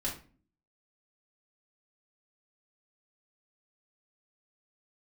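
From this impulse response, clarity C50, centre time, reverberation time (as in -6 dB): 8.0 dB, 24 ms, 0.40 s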